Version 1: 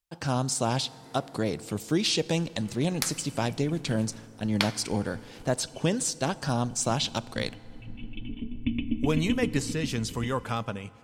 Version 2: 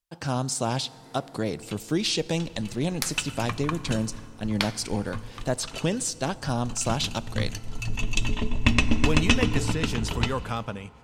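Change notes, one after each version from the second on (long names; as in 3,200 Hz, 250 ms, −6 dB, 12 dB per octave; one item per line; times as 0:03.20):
first sound: remove formant resonators in series i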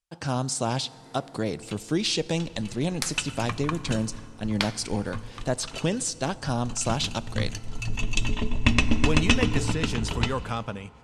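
master: add low-pass filter 11,000 Hz 24 dB per octave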